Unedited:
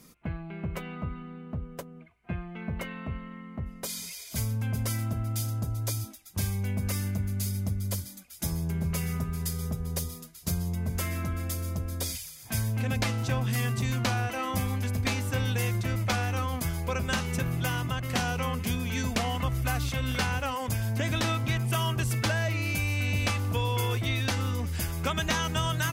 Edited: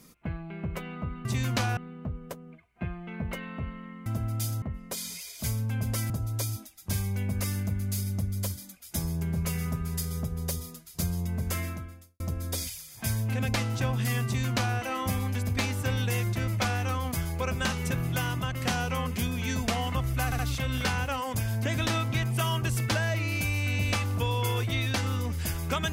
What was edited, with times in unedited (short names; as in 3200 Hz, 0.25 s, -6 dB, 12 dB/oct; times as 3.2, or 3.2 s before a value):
5.02–5.58 move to 3.54
11.09–11.68 fade out quadratic
13.73–14.25 copy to 1.25
19.73 stutter 0.07 s, 3 plays